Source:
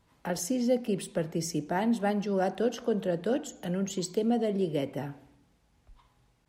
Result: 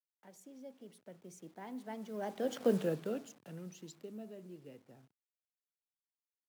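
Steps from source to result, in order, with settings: send-on-delta sampling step -43 dBFS; Doppler pass-by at 2.71 s, 27 m/s, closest 4 m; high-pass 110 Hz 24 dB/octave; trim -1 dB

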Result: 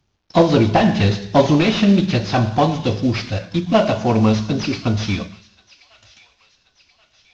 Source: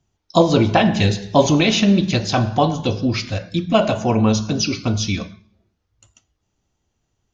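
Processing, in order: CVSD coder 32 kbps; feedback echo behind a high-pass 1081 ms, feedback 50%, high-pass 1.9 kHz, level -19.5 dB; trim +1.5 dB

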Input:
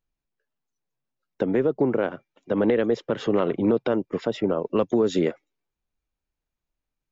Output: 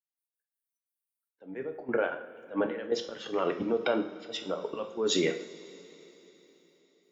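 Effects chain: expander on every frequency bin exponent 1.5; high-pass 810 Hz 6 dB/octave; peak limiter -27 dBFS, peak gain reduction 10.5 dB; slow attack 137 ms; trance gate "..x.x.xxx.xxxxx." 175 bpm -12 dB; two-slope reverb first 0.51 s, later 4 s, from -18 dB, DRR 4.5 dB; trim +9 dB

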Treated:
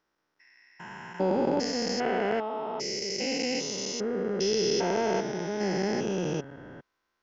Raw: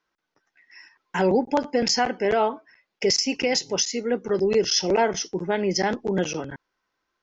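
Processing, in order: spectrogram pixelated in time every 400 ms

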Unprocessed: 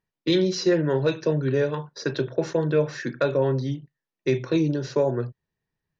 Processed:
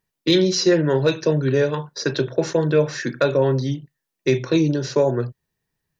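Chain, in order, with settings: treble shelf 5.1 kHz +9 dB; trim +4 dB

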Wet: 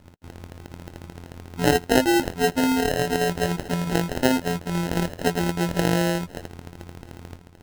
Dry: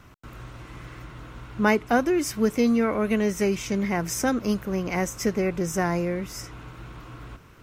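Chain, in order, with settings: robot voice 86.4 Hz; sample-and-hold 38×; trim +4.5 dB

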